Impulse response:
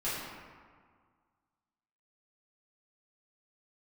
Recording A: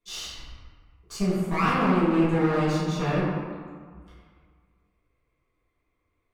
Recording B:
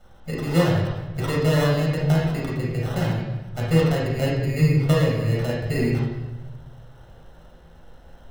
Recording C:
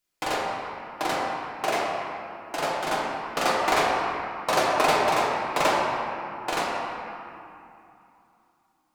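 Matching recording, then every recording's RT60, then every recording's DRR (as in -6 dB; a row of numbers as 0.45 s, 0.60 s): A; 1.8 s, 1.1 s, 2.8 s; -12.0 dB, -5.0 dB, -6.0 dB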